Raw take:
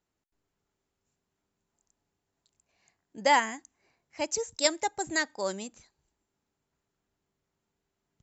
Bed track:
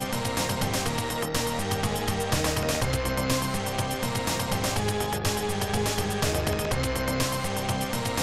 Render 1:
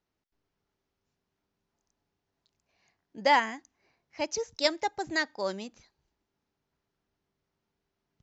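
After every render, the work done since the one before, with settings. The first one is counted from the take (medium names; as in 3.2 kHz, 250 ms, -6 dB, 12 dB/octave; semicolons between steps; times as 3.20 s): steep low-pass 6.1 kHz 48 dB/octave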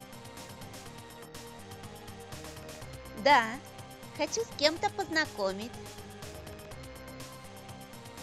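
add bed track -18.5 dB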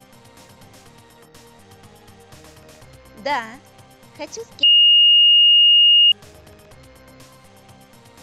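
4.63–6.12 s: bleep 2.85 kHz -8.5 dBFS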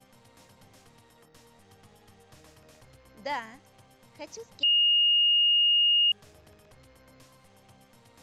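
trim -10.5 dB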